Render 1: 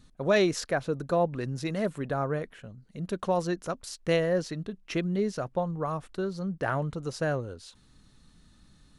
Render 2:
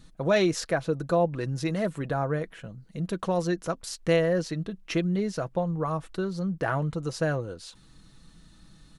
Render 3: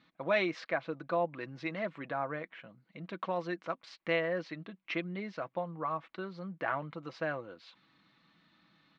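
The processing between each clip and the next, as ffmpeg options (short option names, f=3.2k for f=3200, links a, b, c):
-filter_complex "[0:a]aecho=1:1:6.1:0.37,asplit=2[a][b];[b]acompressor=threshold=-35dB:ratio=6,volume=-2.5dB[c];[a][c]amix=inputs=2:normalize=0,volume=-1dB"
-af "highpass=280,equalizer=f=430:t=q:w=4:g=-9,equalizer=f=1.1k:t=q:w=4:g=4,equalizer=f=2.2k:t=q:w=4:g=8,lowpass=f=3.8k:w=0.5412,lowpass=f=3.8k:w=1.3066,volume=-5.5dB"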